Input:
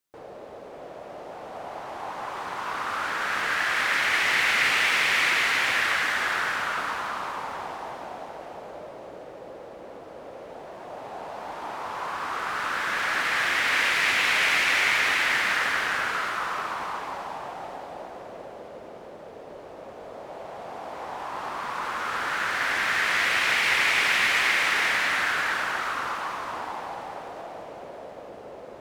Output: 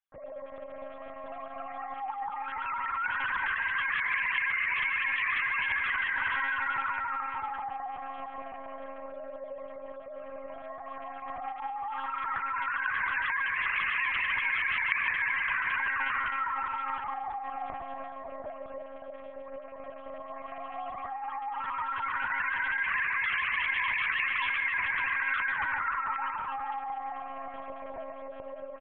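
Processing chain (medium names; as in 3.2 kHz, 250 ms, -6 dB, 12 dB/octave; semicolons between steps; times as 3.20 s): formants replaced by sine waves; peak limiter -19 dBFS, peak gain reduction 6.5 dB; on a send: frequency-shifting echo 144 ms, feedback 46%, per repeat +69 Hz, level -9.5 dB; on the sum: monotone LPC vocoder at 8 kHz 270 Hz; trim -4 dB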